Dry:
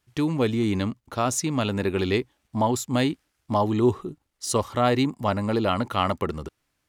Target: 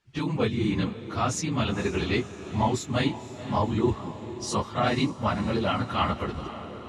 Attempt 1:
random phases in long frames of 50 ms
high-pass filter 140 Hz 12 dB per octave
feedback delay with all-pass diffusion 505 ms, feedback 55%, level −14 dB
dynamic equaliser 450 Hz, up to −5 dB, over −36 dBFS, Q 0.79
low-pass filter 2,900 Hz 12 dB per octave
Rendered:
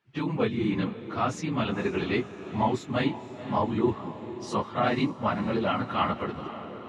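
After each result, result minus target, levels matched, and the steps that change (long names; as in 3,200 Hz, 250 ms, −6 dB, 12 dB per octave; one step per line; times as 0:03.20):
8,000 Hz band −10.5 dB; 125 Hz band −3.0 dB
change: low-pass filter 6,000 Hz 12 dB per octave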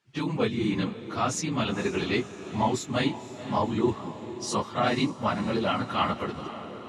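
125 Hz band −3.5 dB
remove: high-pass filter 140 Hz 12 dB per octave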